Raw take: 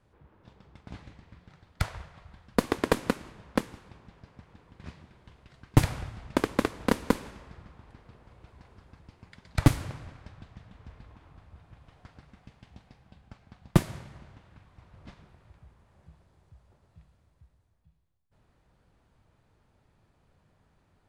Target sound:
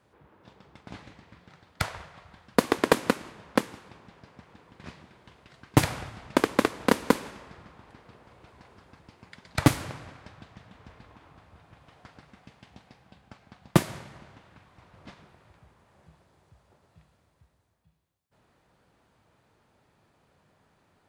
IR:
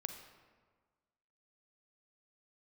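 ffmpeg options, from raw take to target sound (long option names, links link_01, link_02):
-af "highpass=frequency=240:poles=1,volume=5dB"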